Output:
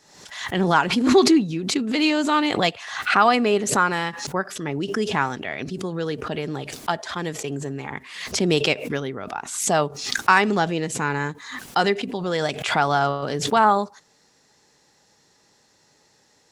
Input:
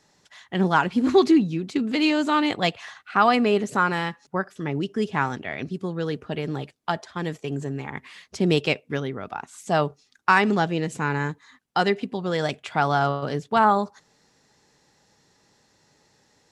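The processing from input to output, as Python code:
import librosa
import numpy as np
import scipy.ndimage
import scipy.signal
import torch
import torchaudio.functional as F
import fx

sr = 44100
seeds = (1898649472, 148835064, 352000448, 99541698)

y = fx.bass_treble(x, sr, bass_db=-4, treble_db=3)
y = fx.pre_swell(y, sr, db_per_s=67.0)
y = y * 10.0 ** (1.5 / 20.0)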